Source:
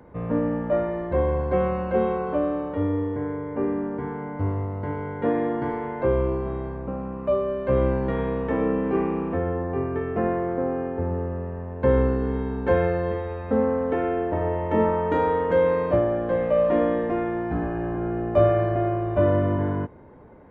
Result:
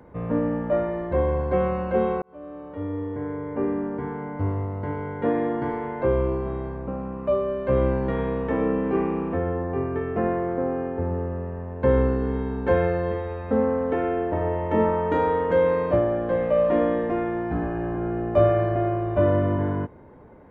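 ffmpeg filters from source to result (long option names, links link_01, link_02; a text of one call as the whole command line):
ffmpeg -i in.wav -filter_complex "[0:a]asplit=2[link_01][link_02];[link_01]atrim=end=2.22,asetpts=PTS-STARTPTS,afade=type=out:start_time=2.216:duration=0.004:curve=hsin[link_03];[link_02]atrim=start=2.22,asetpts=PTS-STARTPTS,afade=type=in:duration=1.26[link_04];[link_03][link_04]concat=n=2:v=0:a=1" out.wav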